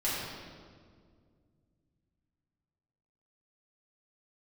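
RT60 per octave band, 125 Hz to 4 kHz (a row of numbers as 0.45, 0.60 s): 3.6, 3.0, 2.3, 1.7, 1.4, 1.3 s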